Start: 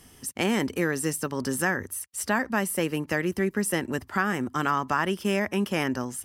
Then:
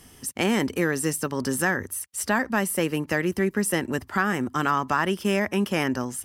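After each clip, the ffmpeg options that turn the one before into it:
-af "acontrast=45,volume=-3.5dB"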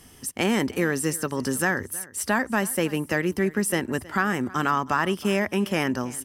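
-af "aecho=1:1:319:0.0944"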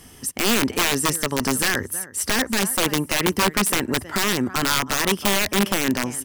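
-af "aeval=exprs='(mod(7.08*val(0)+1,2)-1)/7.08':c=same,volume=4.5dB"

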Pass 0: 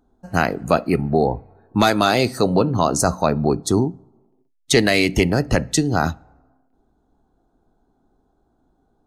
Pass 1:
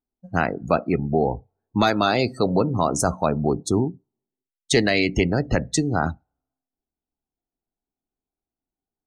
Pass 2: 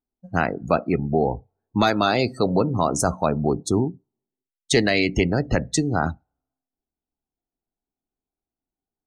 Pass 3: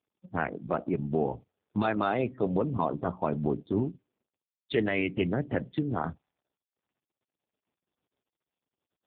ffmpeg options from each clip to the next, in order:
-af "afftdn=nr=25:nf=-29,volume=-3dB"
-af anull
-af "volume=-6.5dB" -ar 8000 -c:a libopencore_amrnb -b:a 4750

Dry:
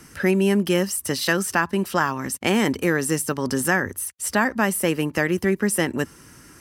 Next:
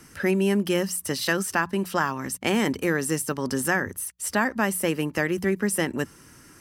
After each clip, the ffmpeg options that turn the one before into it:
-af "bandreject=f=60:t=h:w=6,bandreject=f=120:t=h:w=6,bandreject=f=180:t=h:w=6,volume=-3dB"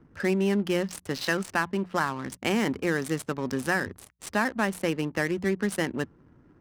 -af "adynamicsmooth=sensitivity=8:basefreq=520,volume=-2.5dB"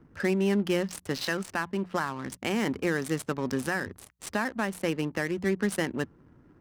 -af "alimiter=limit=-16dB:level=0:latency=1:release=363"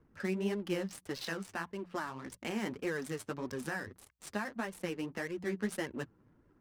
-af "flanger=delay=1.8:depth=8.4:regen=19:speed=1.7:shape=sinusoidal,volume=-5dB"

